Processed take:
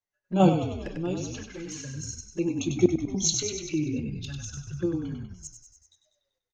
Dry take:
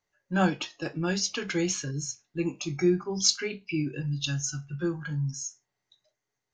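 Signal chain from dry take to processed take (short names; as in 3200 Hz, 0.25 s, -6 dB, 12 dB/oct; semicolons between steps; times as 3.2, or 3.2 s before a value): dynamic EQ 450 Hz, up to +6 dB, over -39 dBFS, Q 0.73; random-step tremolo 3.5 Hz, depth 90%; envelope flanger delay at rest 10.2 ms, full sweep at -31.5 dBFS; frequency-shifting echo 97 ms, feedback 56%, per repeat -32 Hz, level -5 dB; in parallel at -2.5 dB: level quantiser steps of 22 dB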